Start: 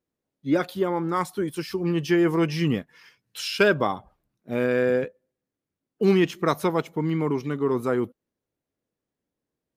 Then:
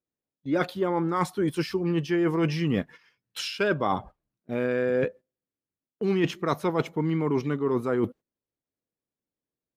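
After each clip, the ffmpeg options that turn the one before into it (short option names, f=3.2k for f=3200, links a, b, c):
-af "agate=range=-16dB:threshold=-45dB:ratio=16:detection=peak,highshelf=f=6.8k:g=-10,areverse,acompressor=threshold=-30dB:ratio=6,areverse,volume=7.5dB"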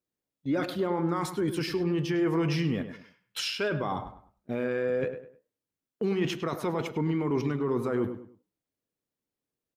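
-filter_complex "[0:a]alimiter=limit=-22dB:level=0:latency=1:release=34,flanger=delay=7.2:depth=1.2:regen=-89:speed=1.9:shape=triangular,asplit=2[a][b];[b]adelay=102,lowpass=f=2.7k:p=1,volume=-10dB,asplit=2[c][d];[d]adelay=102,lowpass=f=2.7k:p=1,volume=0.31,asplit=2[e][f];[f]adelay=102,lowpass=f=2.7k:p=1,volume=0.31[g];[a][c][e][g]amix=inputs=4:normalize=0,volume=6dB"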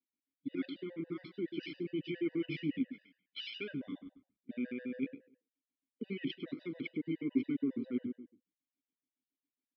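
-filter_complex "[0:a]asplit=3[a][b][c];[a]bandpass=f=270:t=q:w=8,volume=0dB[d];[b]bandpass=f=2.29k:t=q:w=8,volume=-6dB[e];[c]bandpass=f=3.01k:t=q:w=8,volume=-9dB[f];[d][e][f]amix=inputs=3:normalize=0,aresample=11025,aresample=44100,afftfilt=real='re*gt(sin(2*PI*7.2*pts/sr)*(1-2*mod(floor(b*sr/1024/500),2)),0)':imag='im*gt(sin(2*PI*7.2*pts/sr)*(1-2*mod(floor(b*sr/1024/500),2)),0)':win_size=1024:overlap=0.75,volume=5.5dB"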